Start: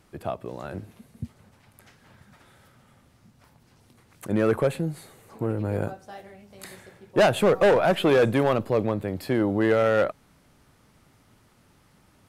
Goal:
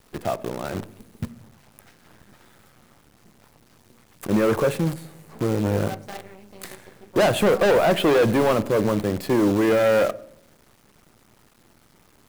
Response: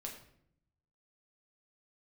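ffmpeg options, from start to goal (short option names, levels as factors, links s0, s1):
-filter_complex "[0:a]acrusher=bits=7:dc=4:mix=0:aa=0.000001,asoftclip=type=hard:threshold=0.0891,asplit=2[s0][s1];[s1]highpass=200,lowpass=2500[s2];[1:a]atrim=start_sample=2205,lowshelf=f=400:g=11[s3];[s2][s3]afir=irnorm=-1:irlink=0,volume=0.299[s4];[s0][s4]amix=inputs=2:normalize=0,volume=1.58"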